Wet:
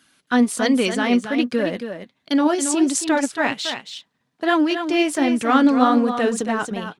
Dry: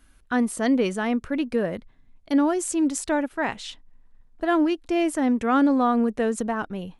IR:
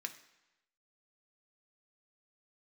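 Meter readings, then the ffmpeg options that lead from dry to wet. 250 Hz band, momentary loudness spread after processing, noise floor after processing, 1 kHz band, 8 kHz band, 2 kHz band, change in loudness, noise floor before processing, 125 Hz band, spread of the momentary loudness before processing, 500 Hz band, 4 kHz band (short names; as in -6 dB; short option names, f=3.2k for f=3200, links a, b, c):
+4.0 dB, 10 LU, -71 dBFS, +5.0 dB, +7.0 dB, +6.5 dB, +4.0 dB, -56 dBFS, n/a, 9 LU, +3.5 dB, +11.0 dB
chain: -filter_complex "[0:a]highpass=f=130:w=0.5412,highpass=f=130:w=1.3066,equalizer=f=4.1k:w=0.75:g=8.5,flanger=delay=0.6:depth=7.8:regen=50:speed=1.3:shape=sinusoidal,asplit=2[a][b];[b]aeval=exprs='sgn(val(0))*max(abs(val(0))-0.00794,0)':c=same,volume=-11.5dB[c];[a][c]amix=inputs=2:normalize=0,aecho=1:1:275:0.376,volume=5.5dB"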